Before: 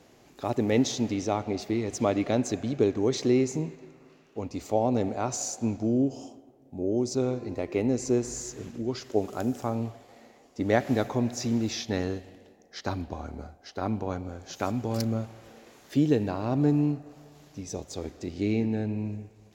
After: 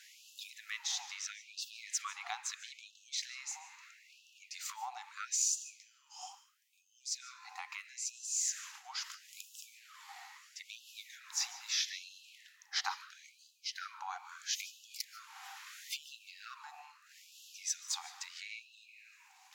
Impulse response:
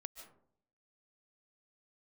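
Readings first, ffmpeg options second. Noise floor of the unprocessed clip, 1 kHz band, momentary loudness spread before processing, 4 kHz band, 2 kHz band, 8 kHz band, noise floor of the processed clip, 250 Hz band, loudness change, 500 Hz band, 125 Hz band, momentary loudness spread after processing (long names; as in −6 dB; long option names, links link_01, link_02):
−57 dBFS, −11.5 dB, 13 LU, +1.0 dB, −4.0 dB, +1.5 dB, −67 dBFS, below −40 dB, −11.0 dB, below −40 dB, below −40 dB, 21 LU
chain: -filter_complex "[0:a]acompressor=threshold=-35dB:ratio=4,asplit=2[link_01][link_02];[1:a]atrim=start_sample=2205,lowshelf=frequency=120:gain=-9[link_03];[link_02][link_03]afir=irnorm=-1:irlink=0,volume=2.5dB[link_04];[link_01][link_04]amix=inputs=2:normalize=0,afftfilt=real='re*gte(b*sr/1024,720*pow(2600/720,0.5+0.5*sin(2*PI*0.76*pts/sr)))':imag='im*gte(b*sr/1024,720*pow(2600/720,0.5+0.5*sin(2*PI*0.76*pts/sr)))':win_size=1024:overlap=0.75,volume=2.5dB"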